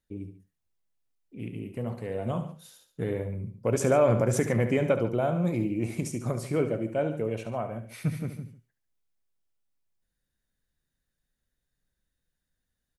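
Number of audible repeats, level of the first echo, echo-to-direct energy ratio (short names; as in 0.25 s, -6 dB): 2, -11.0 dB, -9.5 dB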